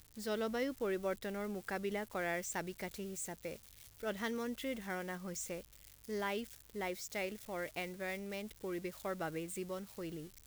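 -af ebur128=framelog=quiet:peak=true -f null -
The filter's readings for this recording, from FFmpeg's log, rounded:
Integrated loudness:
  I:         -40.9 LUFS
  Threshold: -51.1 LUFS
Loudness range:
  LRA:         2.8 LU
  Threshold: -61.4 LUFS
  LRA low:   -42.3 LUFS
  LRA high:  -39.5 LUFS
True peak:
  Peak:      -25.5 dBFS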